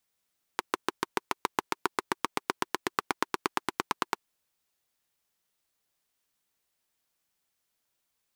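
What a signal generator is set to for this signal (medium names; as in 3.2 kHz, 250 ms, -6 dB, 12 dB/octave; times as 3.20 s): single-cylinder engine model, changing speed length 3.57 s, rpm 800, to 1100, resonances 370/970 Hz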